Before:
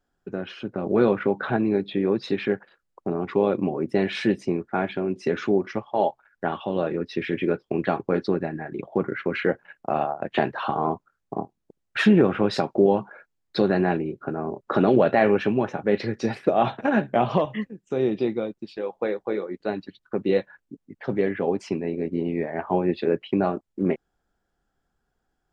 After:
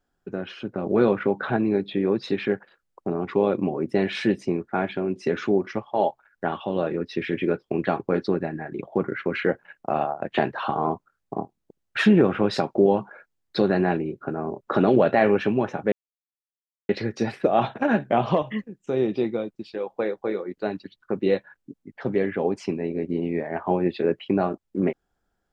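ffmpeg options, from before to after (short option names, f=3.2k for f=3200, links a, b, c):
-filter_complex "[0:a]asplit=2[a][b];[a]atrim=end=15.92,asetpts=PTS-STARTPTS,afade=t=out:st=15.916:d=0.004:c=hsin,apad=pad_dur=0.97[c];[b]atrim=start=15.92,asetpts=PTS-STARTPTS,afade=t=in:d=0.004:c=hsin[d];[c][d]concat=n=2:v=0:a=1"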